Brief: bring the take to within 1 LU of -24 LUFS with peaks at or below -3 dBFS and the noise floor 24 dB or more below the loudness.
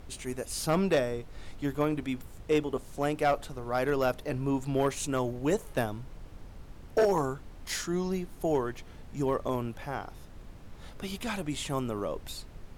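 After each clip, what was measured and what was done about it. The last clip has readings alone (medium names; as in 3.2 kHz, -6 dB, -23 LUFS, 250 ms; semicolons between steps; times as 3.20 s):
clipped samples 0.3%; clipping level -18.5 dBFS; noise floor -48 dBFS; noise floor target -56 dBFS; loudness -31.5 LUFS; peak level -18.5 dBFS; loudness target -24.0 LUFS
-> clip repair -18.5 dBFS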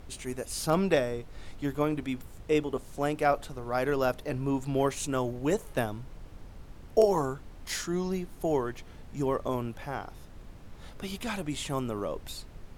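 clipped samples 0.0%; noise floor -48 dBFS; noise floor target -55 dBFS
-> noise print and reduce 7 dB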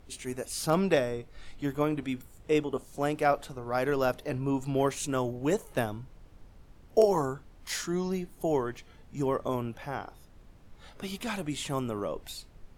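noise floor -55 dBFS; loudness -31.0 LUFS; peak level -10.5 dBFS; loudness target -24.0 LUFS
-> trim +7 dB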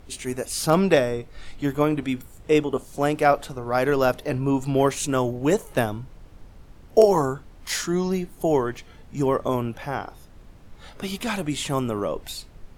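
loudness -24.0 LUFS; peak level -3.5 dBFS; noise floor -48 dBFS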